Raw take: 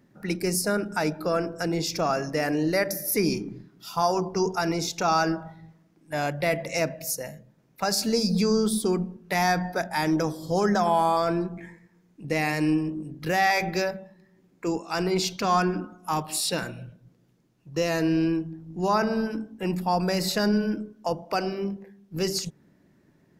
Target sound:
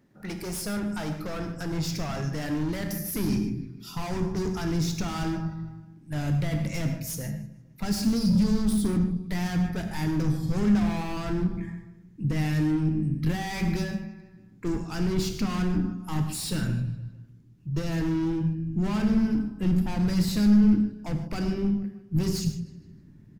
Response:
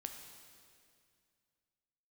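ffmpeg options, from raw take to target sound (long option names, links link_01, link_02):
-filter_complex "[0:a]asplit=2[link_01][link_02];[link_02]adelay=155,lowpass=frequency=4700:poles=1,volume=-19.5dB,asplit=2[link_03][link_04];[link_04]adelay=155,lowpass=frequency=4700:poles=1,volume=0.51,asplit=2[link_05][link_06];[link_06]adelay=155,lowpass=frequency=4700:poles=1,volume=0.51,asplit=2[link_07][link_08];[link_08]adelay=155,lowpass=frequency=4700:poles=1,volume=0.51[link_09];[link_01][link_03][link_05][link_07][link_09]amix=inputs=5:normalize=0,asplit=2[link_10][link_11];[link_11]alimiter=limit=-18dB:level=0:latency=1,volume=-3dB[link_12];[link_10][link_12]amix=inputs=2:normalize=0,volume=23.5dB,asoftclip=hard,volume=-23.5dB,asubboost=boost=10:cutoff=180[link_13];[1:a]atrim=start_sample=2205,afade=type=out:start_time=0.2:duration=0.01,atrim=end_sample=9261[link_14];[link_13][link_14]afir=irnorm=-1:irlink=0,volume=-3.5dB"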